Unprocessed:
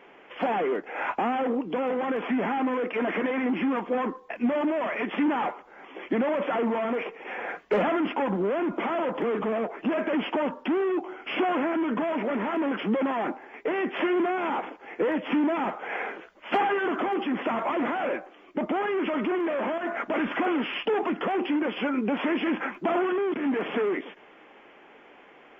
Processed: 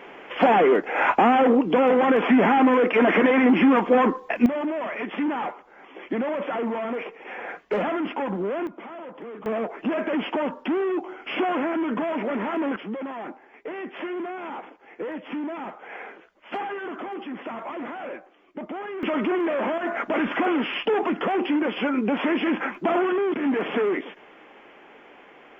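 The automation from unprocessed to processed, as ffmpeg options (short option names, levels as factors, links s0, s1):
-af "asetnsamples=n=441:p=0,asendcmd='4.46 volume volume -1dB;8.67 volume volume -11dB;9.46 volume volume 1dB;12.76 volume volume -6.5dB;19.03 volume volume 3dB',volume=2.82"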